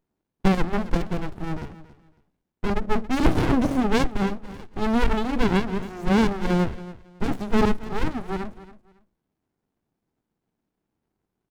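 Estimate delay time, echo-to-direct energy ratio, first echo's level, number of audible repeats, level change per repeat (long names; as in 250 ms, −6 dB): 277 ms, −16.5 dB, −16.5 dB, 2, −13.0 dB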